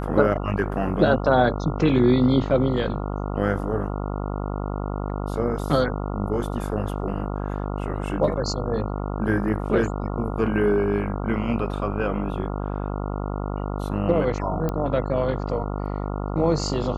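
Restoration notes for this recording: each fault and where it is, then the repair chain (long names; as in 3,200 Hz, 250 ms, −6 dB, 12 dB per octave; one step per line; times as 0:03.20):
mains buzz 50 Hz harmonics 28 −28 dBFS
0:14.69: click −14 dBFS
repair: click removal
hum removal 50 Hz, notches 28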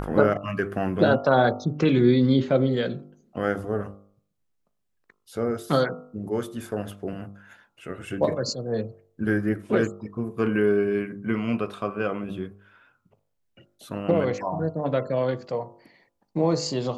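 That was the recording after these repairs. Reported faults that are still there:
none of them is left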